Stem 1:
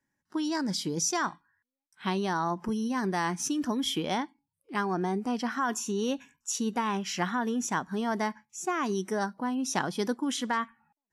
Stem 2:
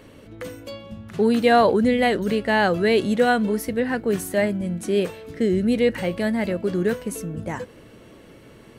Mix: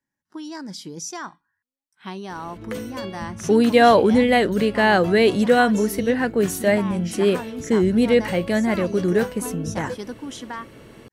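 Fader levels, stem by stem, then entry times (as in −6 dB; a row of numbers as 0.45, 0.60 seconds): −4.0, +2.5 decibels; 0.00, 2.30 seconds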